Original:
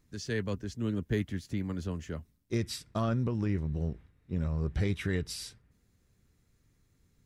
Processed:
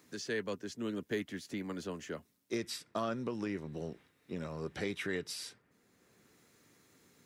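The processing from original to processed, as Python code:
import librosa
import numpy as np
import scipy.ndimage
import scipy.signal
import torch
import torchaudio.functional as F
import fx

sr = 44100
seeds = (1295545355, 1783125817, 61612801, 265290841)

y = scipy.signal.sosfilt(scipy.signal.butter(2, 300.0, 'highpass', fs=sr, output='sos'), x)
y = fx.band_squash(y, sr, depth_pct=40)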